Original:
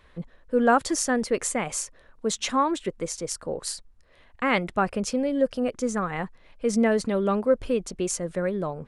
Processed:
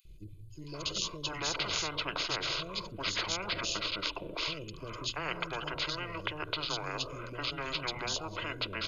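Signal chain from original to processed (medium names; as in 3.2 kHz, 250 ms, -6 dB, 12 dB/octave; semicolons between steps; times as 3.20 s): treble shelf 6 kHz +4 dB; hum notches 50/100 Hz; on a send at -18 dB: reverberation RT60 1.0 s, pre-delay 3 ms; on the sum: pitch shift -8.5 st; static phaser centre 1.2 kHz, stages 8; comb 2 ms, depth 36%; three bands offset in time highs, lows, mids 50/740 ms, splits 230/4400 Hz; spectrum-flattening compressor 10:1; trim -3.5 dB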